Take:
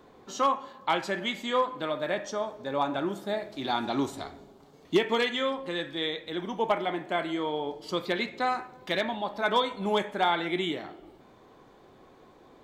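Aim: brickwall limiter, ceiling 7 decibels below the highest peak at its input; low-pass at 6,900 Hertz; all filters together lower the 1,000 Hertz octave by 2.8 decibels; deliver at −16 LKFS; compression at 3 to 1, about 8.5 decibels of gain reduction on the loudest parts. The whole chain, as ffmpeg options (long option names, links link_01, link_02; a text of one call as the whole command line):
ffmpeg -i in.wav -af "lowpass=6900,equalizer=frequency=1000:width_type=o:gain=-3.5,acompressor=threshold=-30dB:ratio=3,volume=20dB,alimiter=limit=-5dB:level=0:latency=1" out.wav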